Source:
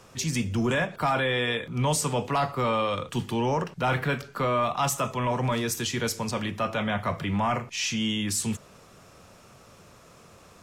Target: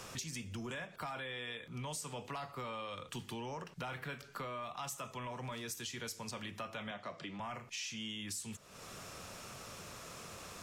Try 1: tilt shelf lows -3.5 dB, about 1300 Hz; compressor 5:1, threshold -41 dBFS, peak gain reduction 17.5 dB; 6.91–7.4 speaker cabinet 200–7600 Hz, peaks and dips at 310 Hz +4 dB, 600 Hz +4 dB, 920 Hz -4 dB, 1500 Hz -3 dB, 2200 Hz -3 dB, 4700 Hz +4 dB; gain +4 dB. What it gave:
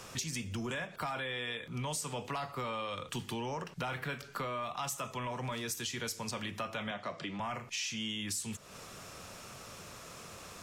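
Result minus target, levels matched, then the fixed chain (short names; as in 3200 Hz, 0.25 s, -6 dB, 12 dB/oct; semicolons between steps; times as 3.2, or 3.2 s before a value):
compressor: peak gain reduction -5 dB
tilt shelf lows -3.5 dB, about 1300 Hz; compressor 5:1, threshold -47.5 dBFS, peak gain reduction 23 dB; 6.91–7.4 speaker cabinet 200–7600 Hz, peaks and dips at 310 Hz +4 dB, 600 Hz +4 dB, 920 Hz -4 dB, 1500 Hz -3 dB, 2200 Hz -3 dB, 4700 Hz +4 dB; gain +4 dB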